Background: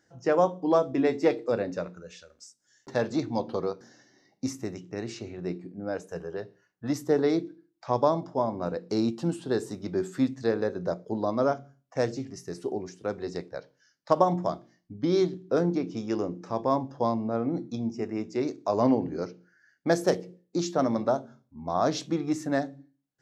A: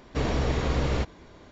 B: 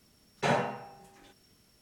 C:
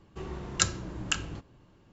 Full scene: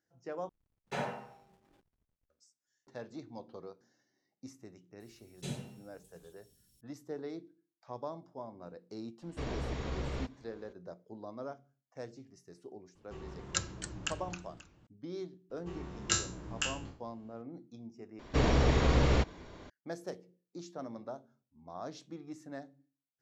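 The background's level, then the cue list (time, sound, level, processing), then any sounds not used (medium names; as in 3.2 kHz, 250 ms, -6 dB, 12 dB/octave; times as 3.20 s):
background -17.5 dB
0.49 s: replace with B -9 dB + hysteresis with a dead band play -49.5 dBFS
5.00 s: add B -3 dB + FFT filter 110 Hz 0 dB, 230 Hz -6 dB, 340 Hz -10 dB, 890 Hz -26 dB, 1.8 kHz -22 dB, 3.6 kHz -4 dB, 5.4 kHz -6 dB, 8.1 kHz +3 dB
9.22 s: add A -11.5 dB
12.95 s: add C -8 dB + modulated delay 271 ms, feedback 34%, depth 171 cents, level -10 dB
15.50 s: add C -7.5 dB + spectral sustain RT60 0.39 s
18.19 s: replace with A -0.5 dB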